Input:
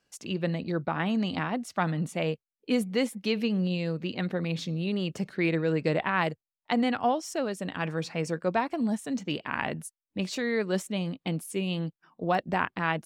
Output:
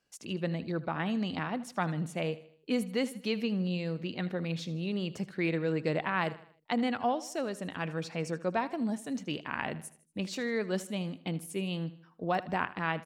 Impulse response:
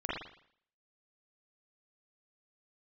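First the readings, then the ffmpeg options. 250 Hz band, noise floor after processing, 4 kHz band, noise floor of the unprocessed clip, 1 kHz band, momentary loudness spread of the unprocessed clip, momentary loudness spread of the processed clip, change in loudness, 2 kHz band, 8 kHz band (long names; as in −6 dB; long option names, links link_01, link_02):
−4.0 dB, −64 dBFS, −4.0 dB, below −85 dBFS, −4.0 dB, 6 LU, 6 LU, −4.0 dB, −4.0 dB, −4.0 dB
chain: -af "aecho=1:1:78|156|234|312:0.141|0.0636|0.0286|0.0129,volume=-4dB"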